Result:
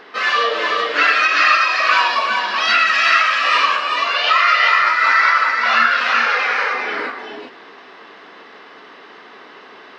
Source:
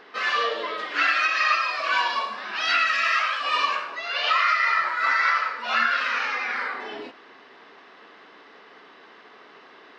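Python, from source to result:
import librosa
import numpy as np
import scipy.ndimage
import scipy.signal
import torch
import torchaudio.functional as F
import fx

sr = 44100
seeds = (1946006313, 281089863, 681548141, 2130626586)

p1 = fx.low_shelf_res(x, sr, hz=330.0, db=-10.5, q=3.0, at=(6.26, 6.72))
p2 = p1 + fx.echo_single(p1, sr, ms=383, db=-4.0, dry=0)
y = p2 * 10.0 ** (7.0 / 20.0)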